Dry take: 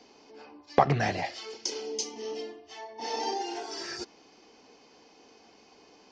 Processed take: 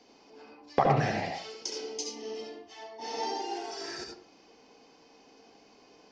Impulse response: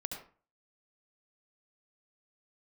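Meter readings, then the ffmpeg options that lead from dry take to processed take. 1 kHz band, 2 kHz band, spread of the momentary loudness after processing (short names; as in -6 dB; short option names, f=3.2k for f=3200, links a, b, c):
-1.0 dB, -2.0 dB, 20 LU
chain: -filter_complex "[1:a]atrim=start_sample=2205[a];[0:a][a]afir=irnorm=-1:irlink=0,volume=-1.5dB"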